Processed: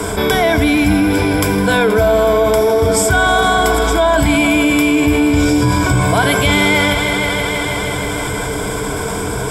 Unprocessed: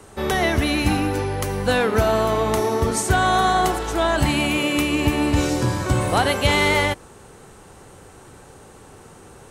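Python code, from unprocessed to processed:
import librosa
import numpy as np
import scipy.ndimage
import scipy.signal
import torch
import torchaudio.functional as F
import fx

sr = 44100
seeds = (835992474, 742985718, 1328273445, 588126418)

y = fx.ripple_eq(x, sr, per_octave=1.7, db=14)
y = fx.echo_heads(y, sr, ms=159, heads='all three', feedback_pct=53, wet_db=-17.5)
y = fx.env_flatten(y, sr, amount_pct=70)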